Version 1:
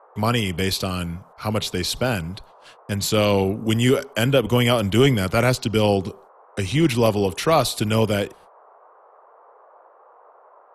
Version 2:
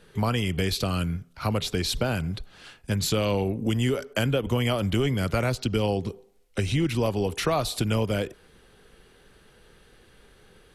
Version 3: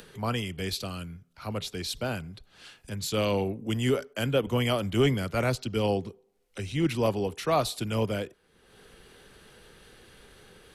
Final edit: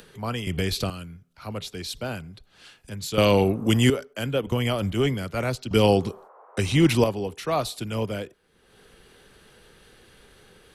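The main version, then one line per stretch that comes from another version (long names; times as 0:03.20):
3
0:00.47–0:00.90: punch in from 2
0:03.18–0:03.90: punch in from 1
0:04.52–0:04.92: punch in from 2
0:05.71–0:07.04: punch in from 1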